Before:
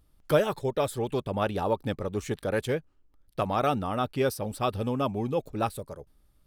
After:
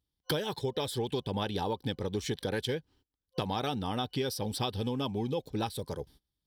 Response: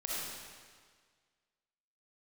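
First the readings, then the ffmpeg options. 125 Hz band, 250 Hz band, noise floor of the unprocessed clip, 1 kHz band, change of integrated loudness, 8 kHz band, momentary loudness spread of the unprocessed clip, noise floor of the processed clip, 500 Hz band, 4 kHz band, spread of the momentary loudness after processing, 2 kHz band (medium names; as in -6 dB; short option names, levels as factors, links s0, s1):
-3.0 dB, -3.0 dB, -65 dBFS, -6.5 dB, -5.0 dB, -0.5 dB, 7 LU, under -85 dBFS, -6.5 dB, +4.5 dB, 5 LU, -5.0 dB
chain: -af "highpass=55,agate=range=0.0562:threshold=0.00112:ratio=16:detection=peak,superequalizer=8b=0.447:10b=0.447:13b=2.82:14b=2.51,acompressor=threshold=0.0141:ratio=6,volume=2.24"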